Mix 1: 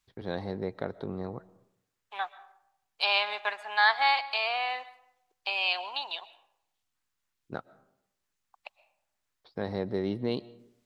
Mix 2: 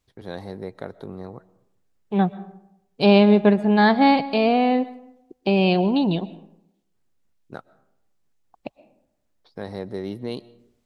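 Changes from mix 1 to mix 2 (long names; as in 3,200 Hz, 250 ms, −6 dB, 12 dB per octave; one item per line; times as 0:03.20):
first voice: remove Savitzky-Golay smoothing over 15 samples
second voice: remove high-pass filter 970 Hz 24 dB per octave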